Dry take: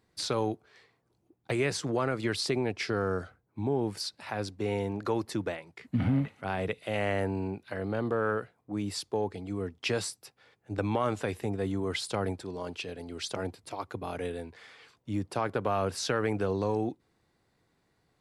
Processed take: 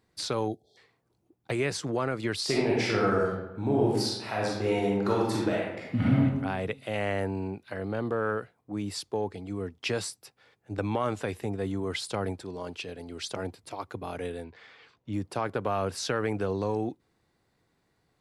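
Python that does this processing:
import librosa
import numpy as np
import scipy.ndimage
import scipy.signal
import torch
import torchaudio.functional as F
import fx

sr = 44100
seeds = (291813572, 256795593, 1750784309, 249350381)

y = fx.spec_erase(x, sr, start_s=0.48, length_s=0.29, low_hz=840.0, high_hz=3200.0)
y = fx.reverb_throw(y, sr, start_s=2.43, length_s=3.77, rt60_s=0.97, drr_db=-4.5)
y = fx.lowpass(y, sr, hz=4600.0, slope=12, at=(14.44, 15.13))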